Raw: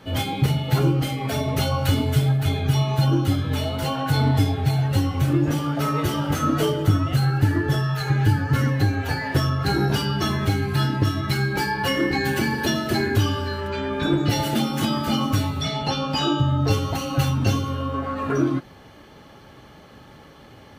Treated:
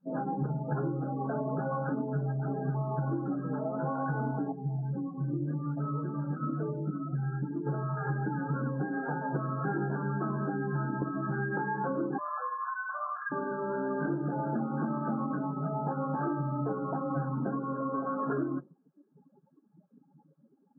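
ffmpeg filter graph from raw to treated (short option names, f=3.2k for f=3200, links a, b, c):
-filter_complex "[0:a]asettb=1/sr,asplit=3[a][b][c];[a]atrim=end=4.524[d];[b]atrim=start=4.52:end=7.67,asetpts=PTS-STARTPTS,afade=t=in:d=0.004:c=qsin,afade=t=out:st=3.146:d=0.004:c=qsin,equalizer=f=730:w=0.34:g=-10.5,acrusher=bits=8:mode=log:mix=0:aa=0.000001[e];[c]atrim=start=7.666[f];[d][e]acrossfade=d=0.004:c1=hsin:c2=qsin[g];[g][f]acrossfade=d=0.004:c1=qsin:c2=hsin,asettb=1/sr,asplit=3[h][i][j];[h]atrim=end=12.184[k];[i]atrim=start=12.18:end=13.32,asetpts=PTS-STARTPTS,afade=t=in:d=0.004:c=qsin,afade=t=out:st=1.136:d=0.004:c=qsin,lowpass=f=2.4k:t=q:w=0.5098,lowpass=f=2.4k:t=q:w=0.6013,lowpass=f=2.4k:t=q:w=0.9,lowpass=f=2.4k:t=q:w=2.563,afreqshift=-2800,highpass=650[l];[j]atrim=start=13.316[m];[k][l]acrossfade=d=0.004:c1=hsin:c2=qsin[n];[n][m]acrossfade=d=0.004:c1=qsin:c2=hsin,afftfilt=real='re*between(b*sr/4096,130,1700)':imag='im*between(b*sr/4096,130,1700)':win_size=4096:overlap=0.75,afftdn=nr=35:nf=-34,acompressor=threshold=-26dB:ratio=6,volume=-2.5dB"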